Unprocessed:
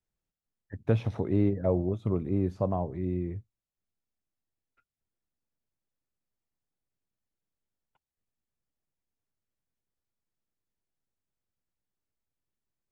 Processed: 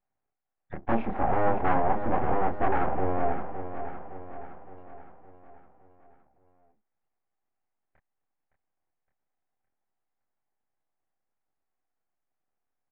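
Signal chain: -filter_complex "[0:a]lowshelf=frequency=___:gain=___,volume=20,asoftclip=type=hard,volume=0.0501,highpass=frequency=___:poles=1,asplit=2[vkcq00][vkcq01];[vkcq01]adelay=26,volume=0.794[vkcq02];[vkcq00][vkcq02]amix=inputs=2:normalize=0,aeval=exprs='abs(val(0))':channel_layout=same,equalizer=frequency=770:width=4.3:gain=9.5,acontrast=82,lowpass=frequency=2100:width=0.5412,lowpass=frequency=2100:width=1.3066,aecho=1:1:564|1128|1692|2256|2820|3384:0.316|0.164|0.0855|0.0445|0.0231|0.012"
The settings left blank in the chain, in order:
400, 4.5, 240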